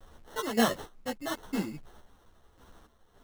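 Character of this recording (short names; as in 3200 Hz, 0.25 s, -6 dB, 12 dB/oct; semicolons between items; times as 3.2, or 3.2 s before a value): a quantiser's noise floor 10-bit, dither none; random-step tremolo 3.5 Hz, depth 70%; aliases and images of a low sample rate 2400 Hz, jitter 0%; a shimmering, thickened sound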